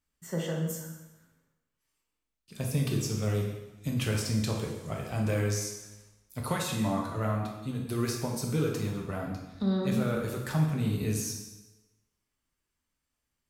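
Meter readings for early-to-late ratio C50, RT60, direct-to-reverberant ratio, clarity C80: 3.5 dB, 1.1 s, -0.5 dB, 5.5 dB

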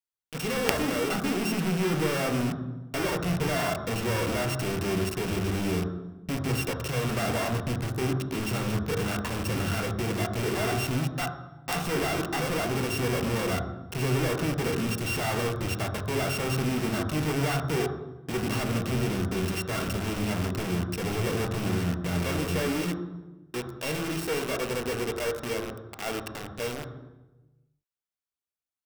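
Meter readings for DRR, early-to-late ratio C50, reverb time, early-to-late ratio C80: 3.0 dB, 7.0 dB, 1.1 s, 9.0 dB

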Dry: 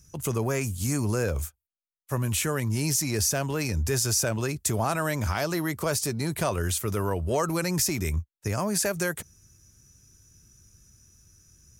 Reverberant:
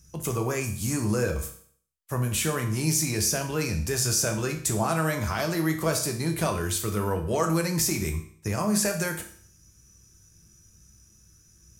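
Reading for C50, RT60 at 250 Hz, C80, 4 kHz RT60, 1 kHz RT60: 9.5 dB, 0.55 s, 13.0 dB, 0.55 s, 0.55 s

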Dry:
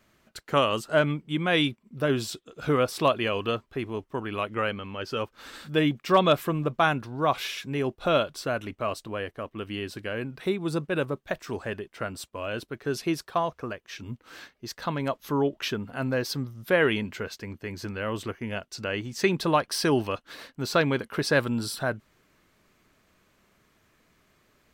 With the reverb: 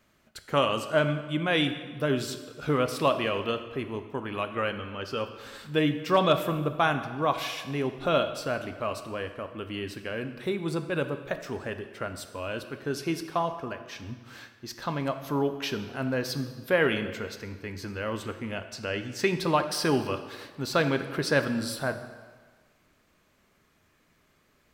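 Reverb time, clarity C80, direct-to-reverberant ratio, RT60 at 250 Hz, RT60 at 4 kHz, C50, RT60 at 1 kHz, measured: 1.5 s, 11.5 dB, 7.5 dB, 1.4 s, 1.2 s, 10.0 dB, 1.5 s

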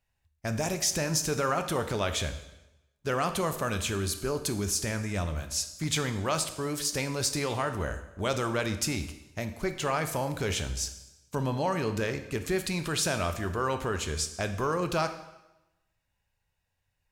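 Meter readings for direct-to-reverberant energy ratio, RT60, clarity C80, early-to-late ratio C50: 8.0 dB, 0.95 s, 13.0 dB, 10.5 dB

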